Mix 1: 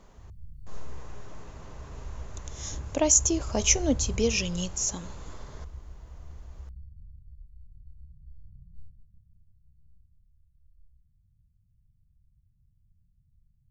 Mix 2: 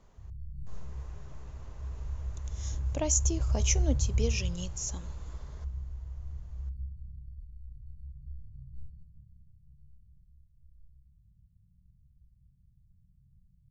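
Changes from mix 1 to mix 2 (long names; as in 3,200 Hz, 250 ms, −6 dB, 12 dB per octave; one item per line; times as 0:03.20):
speech −7.5 dB
reverb: on, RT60 1.2 s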